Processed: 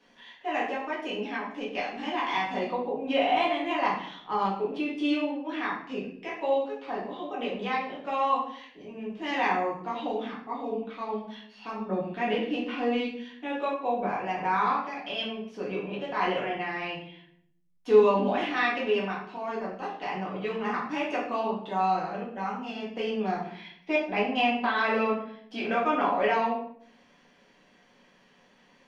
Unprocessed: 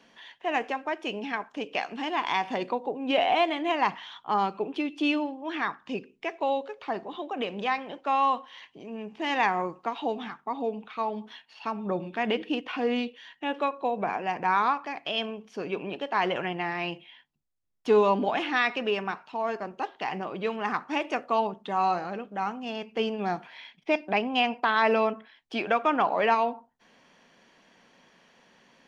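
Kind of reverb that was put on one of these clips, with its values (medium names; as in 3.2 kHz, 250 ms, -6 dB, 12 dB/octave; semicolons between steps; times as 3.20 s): simulated room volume 110 m³, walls mixed, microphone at 1.9 m; trim -9 dB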